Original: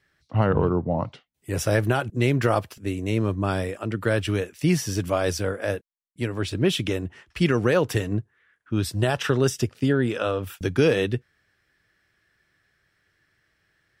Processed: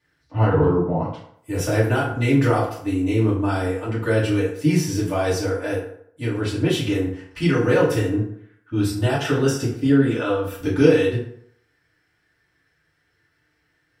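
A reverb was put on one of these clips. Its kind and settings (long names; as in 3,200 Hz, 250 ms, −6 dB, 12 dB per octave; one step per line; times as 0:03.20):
feedback delay network reverb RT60 0.67 s, low-frequency decay 0.85×, high-frequency decay 0.6×, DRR −9 dB
level −7.5 dB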